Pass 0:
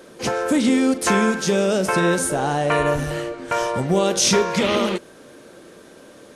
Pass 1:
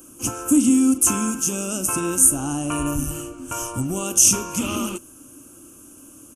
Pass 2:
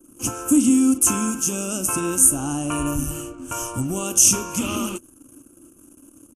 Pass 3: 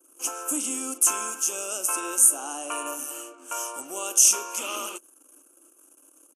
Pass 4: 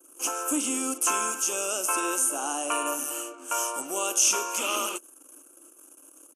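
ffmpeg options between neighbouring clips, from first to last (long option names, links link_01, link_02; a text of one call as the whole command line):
ffmpeg -i in.wav -af "firequalizer=gain_entry='entry(110,0);entry(170,-14);entry(290,1);entry(420,-21);entry(1300,-8);entry(1900,-30);entry(2700,-5);entry(3900,-25);entry(6300,3);entry(12000,11)':delay=0.05:min_phase=1,volume=4.5dB" out.wav
ffmpeg -i in.wav -af "anlmdn=0.0631" out.wav
ffmpeg -i in.wav -af "highpass=frequency=450:width=0.5412,highpass=frequency=450:width=1.3066,volume=-2.5dB" out.wav
ffmpeg -i in.wav -filter_complex "[0:a]acrossover=split=4800[link_01][link_02];[link_02]acompressor=threshold=-29dB:ratio=4:attack=1:release=60[link_03];[link_01][link_03]amix=inputs=2:normalize=0,volume=4dB" out.wav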